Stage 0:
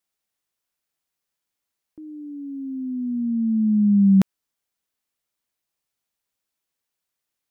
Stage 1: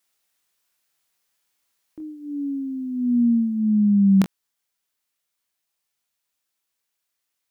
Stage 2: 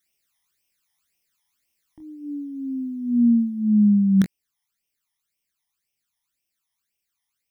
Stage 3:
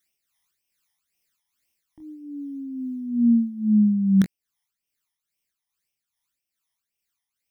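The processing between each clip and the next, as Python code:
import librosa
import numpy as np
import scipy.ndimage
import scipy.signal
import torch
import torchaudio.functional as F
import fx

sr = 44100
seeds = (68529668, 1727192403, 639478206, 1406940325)

y1 = fx.tilt_shelf(x, sr, db=-3.5, hz=710.0)
y1 = fx.room_early_taps(y1, sr, ms=(25, 42), db=(-6.5, -14.5))
y1 = fx.rider(y1, sr, range_db=3, speed_s=0.5)
y1 = F.gain(torch.from_numpy(y1), 2.5).numpy()
y2 = fx.phaser_stages(y1, sr, stages=12, low_hz=440.0, high_hz=1400.0, hz=1.9, feedback_pct=45)
y2 = F.gain(torch.from_numpy(y2), 1.0).numpy()
y3 = y2 * (1.0 - 0.48 / 2.0 + 0.48 / 2.0 * np.cos(2.0 * np.pi * 2.4 * (np.arange(len(y2)) / sr)))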